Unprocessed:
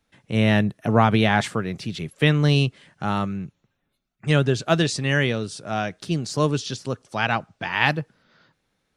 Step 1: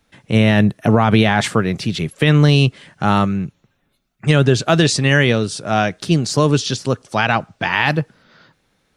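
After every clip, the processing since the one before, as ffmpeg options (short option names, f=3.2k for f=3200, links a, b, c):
-af "alimiter=level_in=10dB:limit=-1dB:release=50:level=0:latency=1,volume=-1dB"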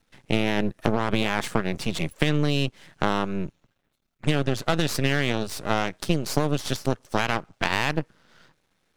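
-af "aeval=exprs='max(val(0),0)':c=same,aeval=exprs='0.841*(cos(1*acos(clip(val(0)/0.841,-1,1)))-cos(1*PI/2))+0.0422*(cos(7*acos(clip(val(0)/0.841,-1,1)))-cos(7*PI/2))':c=same,acompressor=threshold=-19dB:ratio=6,volume=1.5dB"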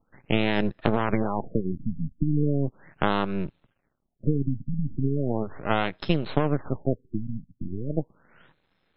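-af "asuperstop=centerf=4600:order=4:qfactor=5.7,afftfilt=real='re*lt(b*sr/1024,270*pow(5400/270,0.5+0.5*sin(2*PI*0.37*pts/sr)))':imag='im*lt(b*sr/1024,270*pow(5400/270,0.5+0.5*sin(2*PI*0.37*pts/sr)))':win_size=1024:overlap=0.75"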